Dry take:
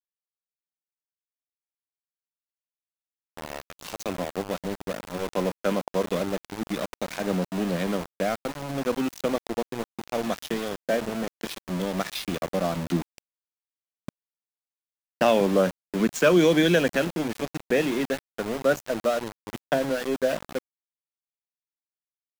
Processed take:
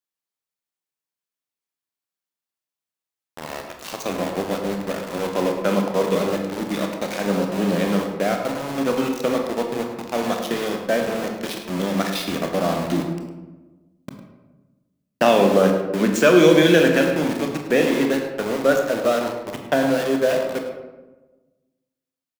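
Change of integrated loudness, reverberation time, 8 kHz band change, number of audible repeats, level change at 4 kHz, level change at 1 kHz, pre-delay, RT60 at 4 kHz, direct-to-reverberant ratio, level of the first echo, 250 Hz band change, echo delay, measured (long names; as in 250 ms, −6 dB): +6.0 dB, 1.2 s, +5.0 dB, 1, +5.5 dB, +6.0 dB, 22 ms, 0.60 s, 2.5 dB, −12.5 dB, +6.0 dB, 105 ms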